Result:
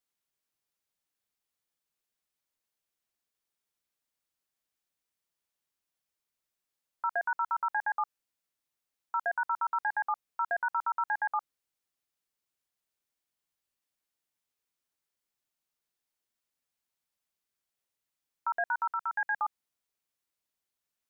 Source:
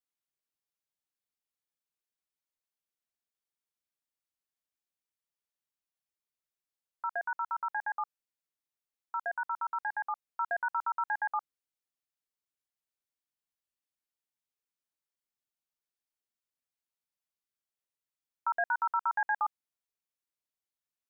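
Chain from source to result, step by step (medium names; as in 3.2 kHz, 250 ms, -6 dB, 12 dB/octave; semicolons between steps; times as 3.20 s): 18.91–19.38 s: graphic EQ 250/500/1000 Hz -6/-6/-10 dB; peak limiter -27.5 dBFS, peak gain reduction 5.5 dB; trim +5 dB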